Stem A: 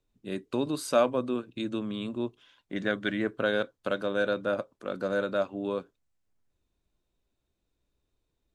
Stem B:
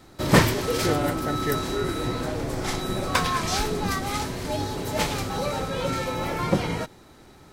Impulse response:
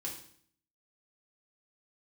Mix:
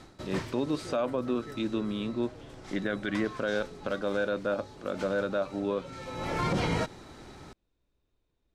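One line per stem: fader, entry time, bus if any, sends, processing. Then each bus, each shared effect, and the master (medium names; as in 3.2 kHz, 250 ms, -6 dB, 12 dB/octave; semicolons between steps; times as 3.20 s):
+1.5 dB, 0.00 s, no send, de-esser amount 80%; treble shelf 6.4 kHz -10 dB
+2.5 dB, 0.00 s, no send, auto duck -21 dB, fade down 0.30 s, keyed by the first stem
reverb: none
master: low-pass 8.1 kHz 12 dB/octave; peak limiter -19.5 dBFS, peak gain reduction 14.5 dB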